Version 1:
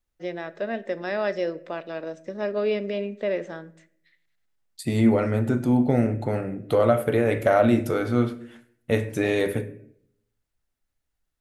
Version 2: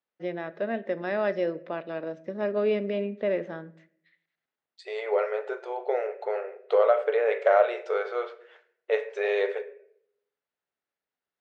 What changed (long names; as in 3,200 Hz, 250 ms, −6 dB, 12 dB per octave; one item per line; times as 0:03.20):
second voice: add linear-phase brick-wall band-pass 380–8,900 Hz
master: add high-frequency loss of the air 220 metres